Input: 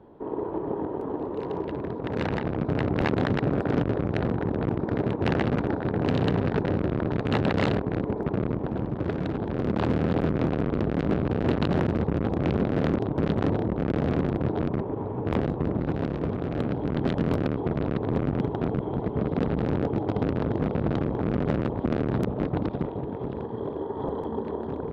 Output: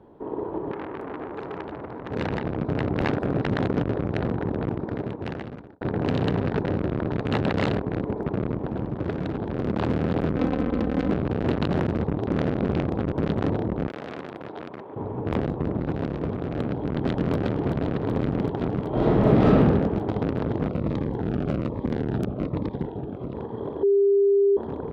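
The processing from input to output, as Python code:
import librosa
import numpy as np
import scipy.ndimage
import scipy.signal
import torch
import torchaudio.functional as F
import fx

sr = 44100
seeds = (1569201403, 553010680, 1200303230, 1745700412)

y = fx.transformer_sat(x, sr, knee_hz=1400.0, at=(0.71, 2.11))
y = fx.comb(y, sr, ms=3.9, depth=0.65, at=(10.36, 11.11))
y = fx.highpass(y, sr, hz=1100.0, slope=6, at=(13.88, 14.96))
y = fx.echo_throw(y, sr, start_s=16.69, length_s=0.65, ms=380, feedback_pct=85, wet_db=-6.5)
y = fx.reverb_throw(y, sr, start_s=18.88, length_s=0.7, rt60_s=1.3, drr_db=-9.0)
y = fx.notch_cascade(y, sr, direction='falling', hz=1.2, at=(20.69, 23.33), fade=0.02)
y = fx.edit(y, sr, fx.reverse_span(start_s=3.09, length_s=0.66),
    fx.fade_out_span(start_s=4.55, length_s=1.26),
    fx.reverse_span(start_s=12.13, length_s=1.0),
    fx.bleep(start_s=23.83, length_s=0.74, hz=399.0, db=-15.5), tone=tone)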